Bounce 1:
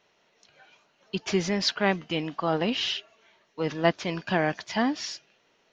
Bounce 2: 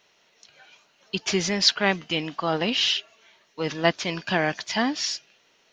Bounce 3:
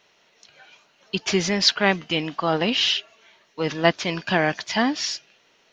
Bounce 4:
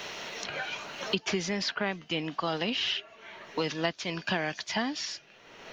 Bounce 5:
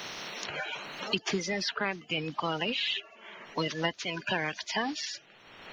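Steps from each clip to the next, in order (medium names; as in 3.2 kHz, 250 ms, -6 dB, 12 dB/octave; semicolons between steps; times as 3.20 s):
treble shelf 2.1 kHz +9 dB
treble shelf 5.4 kHz -5 dB; trim +3 dB
three bands compressed up and down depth 100%; trim -9 dB
coarse spectral quantiser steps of 30 dB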